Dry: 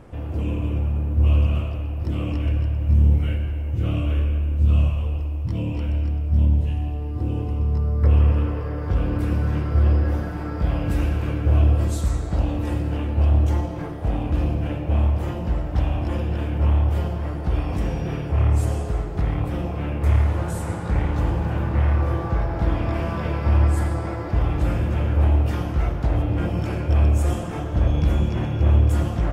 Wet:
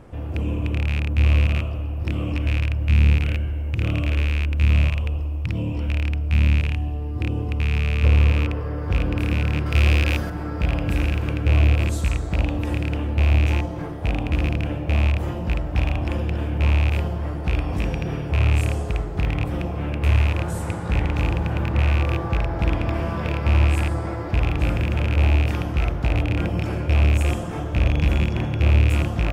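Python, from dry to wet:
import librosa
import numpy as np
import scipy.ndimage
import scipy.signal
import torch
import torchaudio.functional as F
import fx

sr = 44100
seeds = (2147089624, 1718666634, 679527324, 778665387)

y = fx.rattle_buzz(x, sr, strikes_db=-18.0, level_db=-17.0)
y = fx.high_shelf(y, sr, hz=2200.0, db=10.5, at=(9.66, 10.3))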